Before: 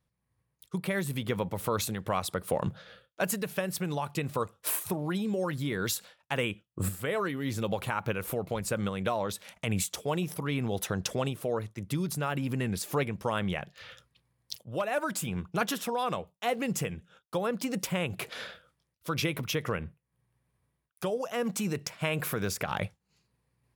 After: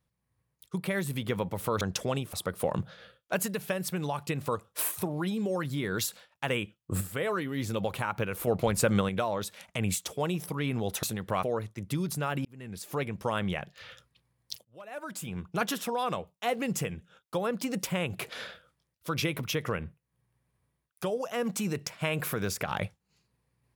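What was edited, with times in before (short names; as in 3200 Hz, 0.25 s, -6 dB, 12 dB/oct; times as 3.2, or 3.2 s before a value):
1.81–2.21 swap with 10.91–11.43
8.35–8.97 gain +6 dB
12.45–13.22 fade in
14.65–15.66 fade in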